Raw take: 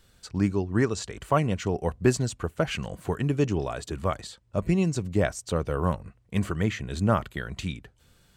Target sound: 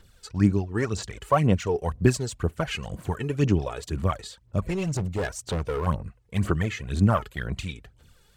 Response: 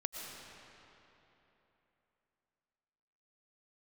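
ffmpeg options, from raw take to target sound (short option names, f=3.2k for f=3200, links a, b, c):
-filter_complex "[0:a]aphaser=in_gain=1:out_gain=1:delay=2.4:decay=0.63:speed=2:type=sinusoidal,asettb=1/sr,asplit=3[a][b][c];[a]atrim=end=4.634[d];[b]atrim=start=4.63:end=5.87,asetpts=PTS-STARTPTS,afade=t=in:d=0.004:c=qsin,afade=t=out:st=1.236:d=0.004:c=qsin,volume=22dB,asoftclip=hard,volume=-22dB[e];[c]atrim=start=5.866[f];[d][e]acrossfade=d=0.004:c1=hsin:c2=qsin[g];[g][f]acrossfade=d=0.004:c1=qsin:c2=hsin,volume=-1.5dB"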